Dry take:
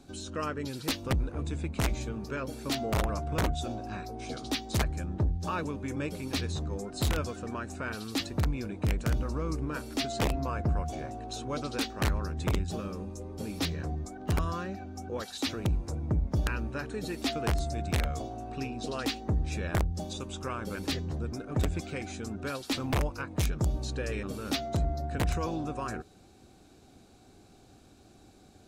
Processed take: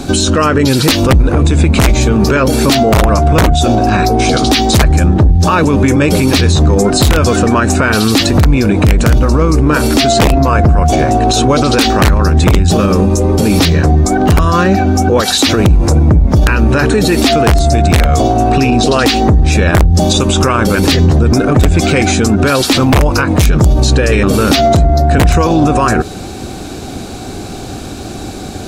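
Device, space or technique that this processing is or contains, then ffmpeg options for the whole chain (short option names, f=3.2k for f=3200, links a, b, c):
loud club master: -af "acompressor=threshold=-30dB:ratio=3,asoftclip=type=hard:threshold=-24.5dB,alimiter=level_in=33.5dB:limit=-1dB:release=50:level=0:latency=1,volume=-1dB"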